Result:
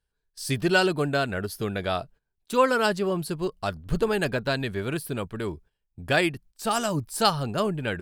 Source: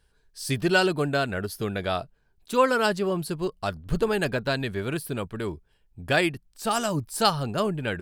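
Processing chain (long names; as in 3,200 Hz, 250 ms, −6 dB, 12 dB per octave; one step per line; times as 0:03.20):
noise gate −49 dBFS, range −15 dB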